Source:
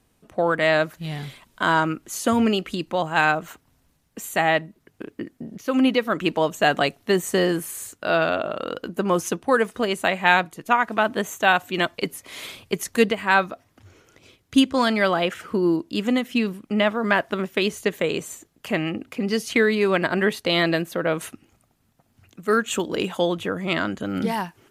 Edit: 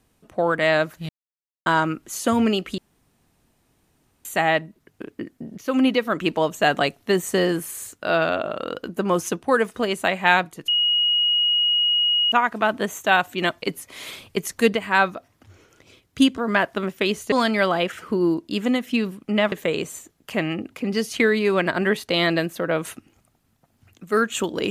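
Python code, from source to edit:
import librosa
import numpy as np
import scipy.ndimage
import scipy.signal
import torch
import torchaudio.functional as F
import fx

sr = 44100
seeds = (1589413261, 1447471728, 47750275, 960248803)

y = fx.edit(x, sr, fx.silence(start_s=1.09, length_s=0.57),
    fx.room_tone_fill(start_s=2.78, length_s=1.47),
    fx.insert_tone(at_s=10.68, length_s=1.64, hz=2890.0, db=-16.5),
    fx.move(start_s=16.94, length_s=0.94, to_s=14.74), tone=tone)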